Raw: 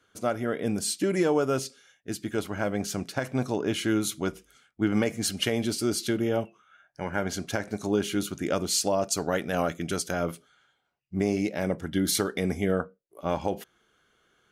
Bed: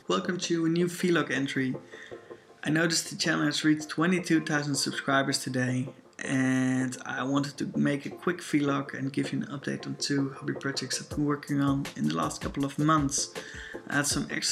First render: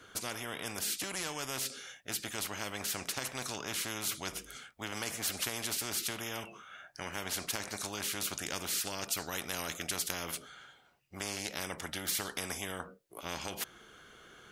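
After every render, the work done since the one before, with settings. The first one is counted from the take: spectral compressor 4:1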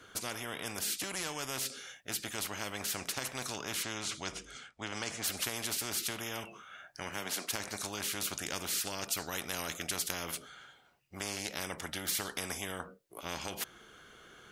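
3.83–5.24 LPF 8100 Hz 24 dB/oct; 7.09–7.49 HPF 69 Hz -> 250 Hz 24 dB/oct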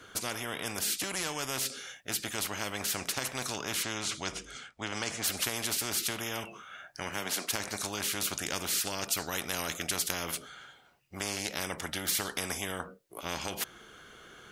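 gain +3.5 dB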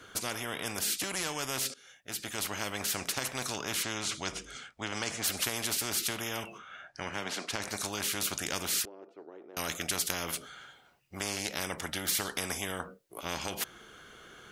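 1.74–2.49 fade in, from -18 dB; 6.58–7.62 air absorption 73 m; 8.85–9.57 ladder band-pass 410 Hz, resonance 60%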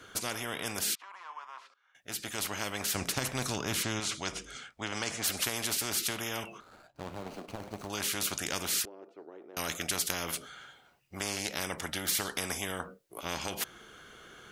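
0.95–1.95 ladder band-pass 1100 Hz, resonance 75%; 2.95–4 low shelf 290 Hz +9 dB; 6.6–7.9 median filter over 25 samples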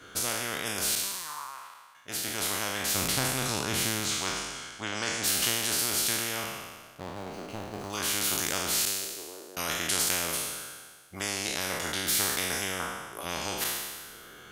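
spectral trails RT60 1.51 s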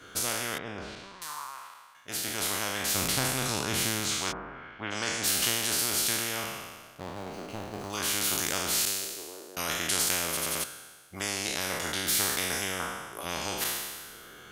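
0.58–1.22 tape spacing loss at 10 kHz 37 dB; 4.31–4.9 LPF 1300 Hz -> 3000 Hz 24 dB/oct; 10.28 stutter in place 0.09 s, 4 plays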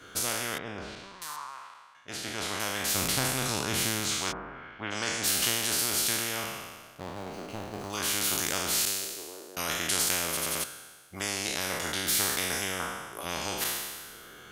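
1.36–2.6 air absorption 63 m

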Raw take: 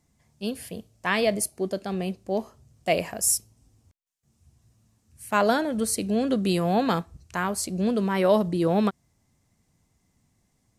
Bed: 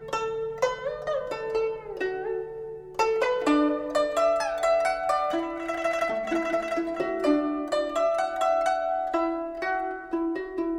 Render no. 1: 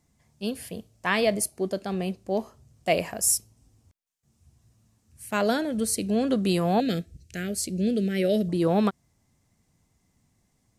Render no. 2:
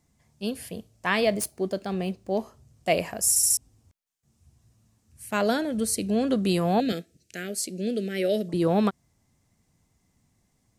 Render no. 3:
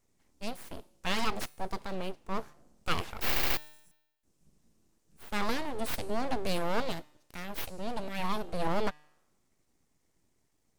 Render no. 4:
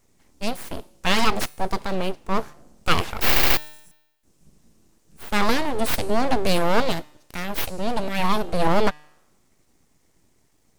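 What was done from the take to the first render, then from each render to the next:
5.26–6.09 bell 1000 Hz -7.5 dB 1.1 oct; 6.8–8.49 Butterworth band-stop 1000 Hz, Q 0.73
1.24–2.38 median filter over 3 samples; 3.29 stutter in place 0.07 s, 4 plays; 6.92–8.54 HPF 260 Hz
resonator 150 Hz, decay 0.9 s, harmonics all, mix 40%; full-wave rectifier
gain +11 dB

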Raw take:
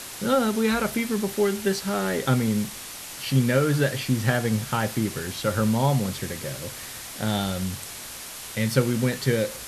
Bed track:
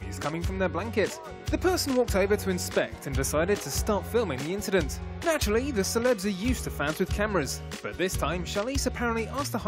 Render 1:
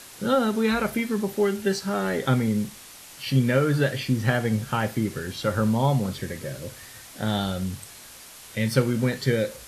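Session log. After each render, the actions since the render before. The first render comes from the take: noise print and reduce 7 dB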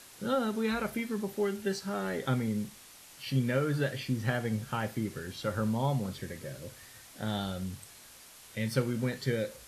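gain -8 dB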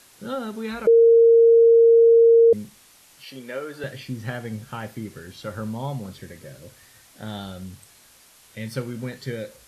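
0.87–2.53 bleep 461 Hz -10 dBFS; 3.24–3.84 Chebyshev high-pass 430 Hz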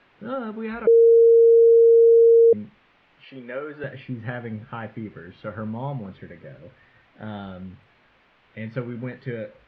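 LPF 2700 Hz 24 dB/oct; bell 79 Hz -8 dB 0.42 oct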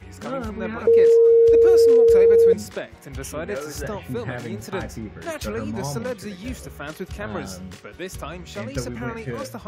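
add bed track -5 dB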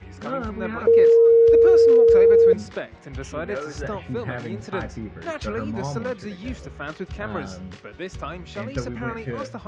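Bessel low-pass 4500 Hz, order 8; dynamic EQ 1300 Hz, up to +4 dB, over -41 dBFS, Q 3.2

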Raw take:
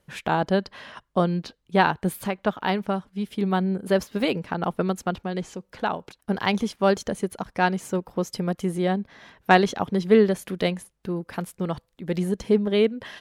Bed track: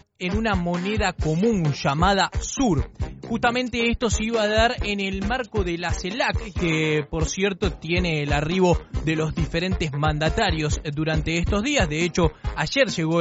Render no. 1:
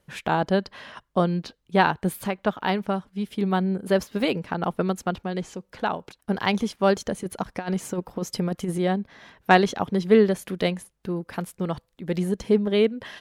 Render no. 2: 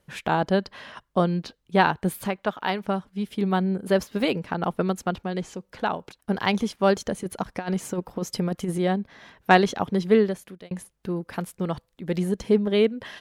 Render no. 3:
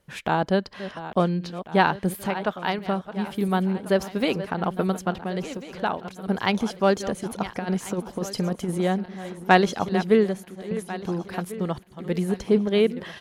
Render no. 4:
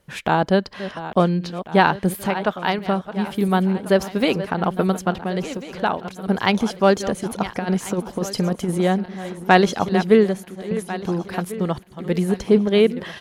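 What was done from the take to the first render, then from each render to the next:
7.23–8.78 negative-ratio compressor -25 dBFS, ratio -0.5
2.36–2.84 low shelf 320 Hz -7.5 dB; 10.03–10.71 fade out
regenerating reverse delay 0.697 s, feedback 58%, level -13 dB
gain +4.5 dB; limiter -1 dBFS, peak gain reduction 2.5 dB

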